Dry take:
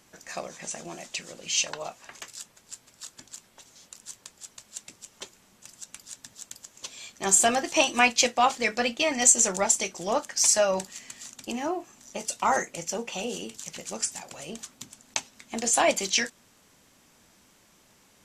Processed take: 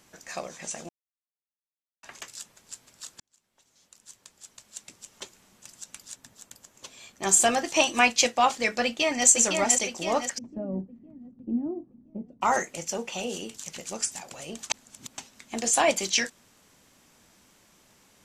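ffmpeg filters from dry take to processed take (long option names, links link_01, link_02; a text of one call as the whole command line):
ffmpeg -i in.wav -filter_complex "[0:a]asettb=1/sr,asplit=3[link_01][link_02][link_03];[link_01]atrim=end=6.154[link_04];[link_02]atrim=start=6.15:end=7.23,asetpts=PTS-STARTPTS,afade=type=in:duration=0.004:curve=qsin,afade=type=out:start_time=1.076:duration=0.004:curve=qsin,equalizer=frequency=5400:width=0.42:gain=-6.5[link_05];[link_03]atrim=start=7.226[link_06];[link_04][link_05]acrossfade=duration=0.004:curve1=hsin:curve2=qsin[link_07];[link_07][link_06]acrossfade=duration=0.004:curve1=qsin:curve2=hsin,asplit=2[link_08][link_09];[link_09]afade=type=in:start_time=8.84:duration=0.01,afade=type=out:start_time=9.27:duration=0.01,aecho=0:1:510|1020|1530|2040|2550|3060|3570:0.630957|0.347027|0.190865|0.104976|0.0577365|0.0317551|0.0174653[link_10];[link_08][link_10]amix=inputs=2:normalize=0,asplit=3[link_11][link_12][link_13];[link_11]afade=type=out:start_time=10.37:duration=0.02[link_14];[link_12]lowpass=frequency=250:width_type=q:width=2.2,afade=type=in:start_time=10.37:duration=0.02,afade=type=out:start_time=12.41:duration=0.02[link_15];[link_13]afade=type=in:start_time=12.41:duration=0.02[link_16];[link_14][link_15][link_16]amix=inputs=3:normalize=0,asplit=6[link_17][link_18][link_19][link_20][link_21][link_22];[link_17]atrim=end=0.89,asetpts=PTS-STARTPTS,afade=type=out:start_time=0.886:duration=0.004:curve=hsin[link_23];[link_18]atrim=start=0.89:end=2.03,asetpts=PTS-STARTPTS,volume=0[link_24];[link_19]atrim=start=2.03:end=3.2,asetpts=PTS-STARTPTS,afade=type=in:duration=0.004:curve=hsin,afade=type=out:start_time=1.166:duration=0.004:curve=hsin[link_25];[link_20]atrim=start=3.2:end=14.702,asetpts=PTS-STARTPTS,afade=type=in:duration=1.96[link_26];[link_21]atrim=start=14.698:end=15.182,asetpts=PTS-STARTPTS,areverse[link_27];[link_22]atrim=start=15.178[link_28];[link_23][link_24][link_25][link_26]concat=n=4:v=0:a=1[link_29];[link_29][link_27]acrossfade=duration=0.004:curve1=hsin:curve2=hsin[link_30];[link_30][link_28]acrossfade=duration=0.004:curve1=hsin:curve2=hsin" out.wav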